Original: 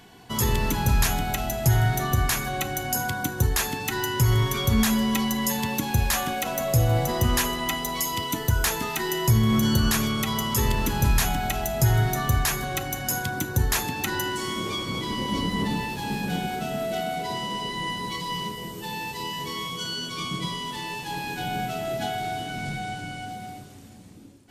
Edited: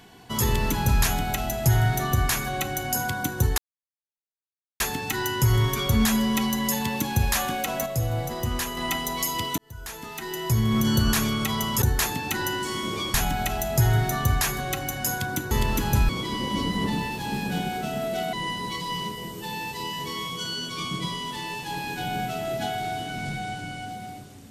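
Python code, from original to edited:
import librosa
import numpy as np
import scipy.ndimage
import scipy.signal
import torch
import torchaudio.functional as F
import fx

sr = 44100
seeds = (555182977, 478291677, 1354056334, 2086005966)

y = fx.edit(x, sr, fx.insert_silence(at_s=3.58, length_s=1.22),
    fx.clip_gain(start_s=6.64, length_s=0.91, db=-5.5),
    fx.fade_in_span(start_s=8.36, length_s=1.38),
    fx.swap(start_s=10.6, length_s=0.58, other_s=13.55, other_length_s=1.32),
    fx.cut(start_s=17.11, length_s=0.62), tone=tone)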